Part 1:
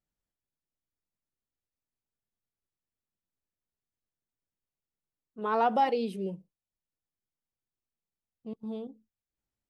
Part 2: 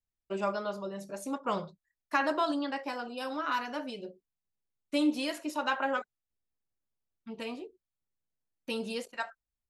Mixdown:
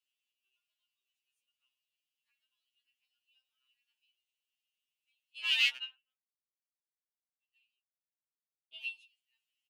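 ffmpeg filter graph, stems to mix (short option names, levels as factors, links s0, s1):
-filter_complex "[0:a]aeval=exprs='0.0398*(abs(mod(val(0)/0.0398+3,4)-2)-1)':c=same,volume=1.26,asplit=3[s0][s1][s2];[s0]atrim=end=5.77,asetpts=PTS-STARTPTS,afade=t=out:st=5.766:d=0.004:c=hsin[s3];[s1]atrim=start=5.77:end=8.74,asetpts=PTS-STARTPTS,volume=0[s4];[s2]atrim=start=8.74,asetpts=PTS-STARTPTS,afade=t=in:d=0.004:c=hsin[s5];[s3][s4][s5]concat=n=3:v=0:a=1,asplit=2[s6][s7];[1:a]acompressor=threshold=0.0112:ratio=6,adelay=150,volume=0.355[s8];[s7]apad=whole_len=433988[s9];[s8][s9]sidechaingate=range=0.0355:threshold=0.002:ratio=16:detection=peak[s10];[s6][s10]amix=inputs=2:normalize=0,highpass=f=2800:t=q:w=9.9,afftfilt=real='re*2.45*eq(mod(b,6),0)':imag='im*2.45*eq(mod(b,6),0)':win_size=2048:overlap=0.75"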